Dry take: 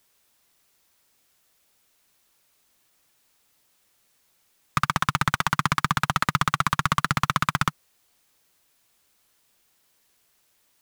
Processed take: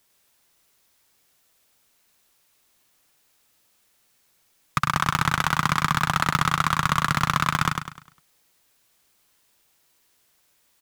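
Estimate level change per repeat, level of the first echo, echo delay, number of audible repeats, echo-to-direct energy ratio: -8.5 dB, -5.0 dB, 101 ms, 4, -4.5 dB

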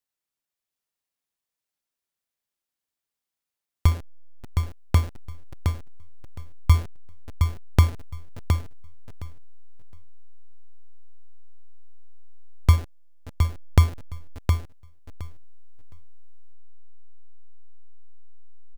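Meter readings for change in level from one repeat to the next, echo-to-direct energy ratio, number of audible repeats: -16.0 dB, -5.5 dB, 2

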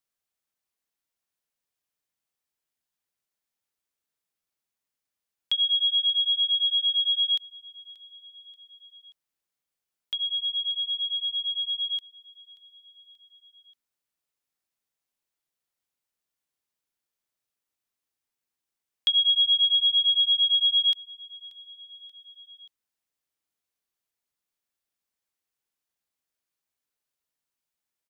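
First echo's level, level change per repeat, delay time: -18.5 dB, -4.5 dB, 582 ms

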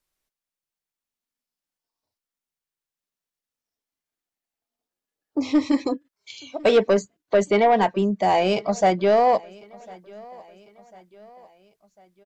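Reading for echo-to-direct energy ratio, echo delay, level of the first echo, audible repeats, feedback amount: -23.0 dB, 1049 ms, -24.0 dB, 2, 49%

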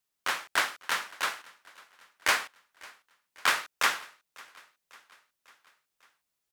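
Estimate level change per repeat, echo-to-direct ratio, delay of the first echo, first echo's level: -5.0 dB, -22.0 dB, 548 ms, -23.5 dB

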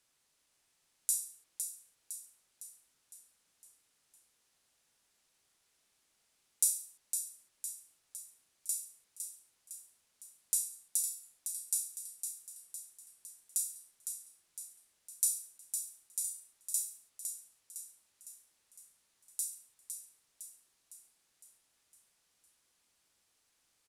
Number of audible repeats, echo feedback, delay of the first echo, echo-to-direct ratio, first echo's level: 6, 53%, 508 ms, -5.5 dB, -7.0 dB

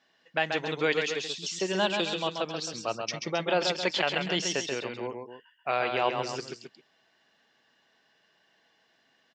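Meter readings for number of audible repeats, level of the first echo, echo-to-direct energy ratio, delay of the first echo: 2, -5.5 dB, -4.5 dB, 134 ms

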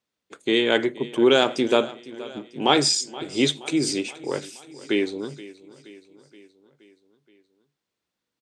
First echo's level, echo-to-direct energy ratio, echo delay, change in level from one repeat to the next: -18.5 dB, -16.5 dB, 474 ms, -4.5 dB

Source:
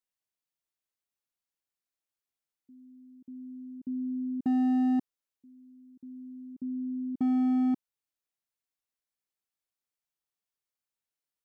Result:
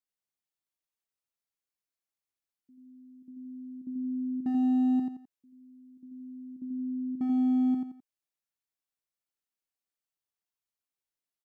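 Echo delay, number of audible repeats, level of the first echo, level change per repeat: 86 ms, 3, -4.0 dB, -9.5 dB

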